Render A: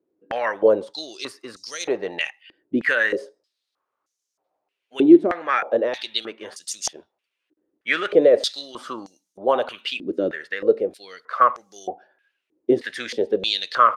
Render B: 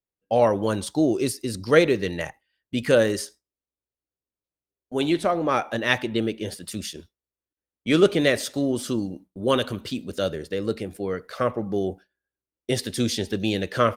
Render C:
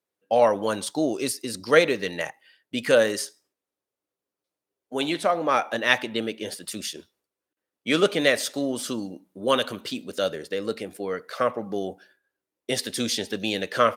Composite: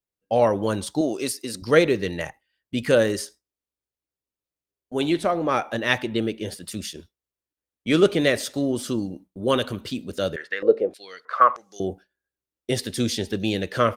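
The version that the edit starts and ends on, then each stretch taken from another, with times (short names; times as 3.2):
B
1.01–1.62 from C
10.36–11.8 from A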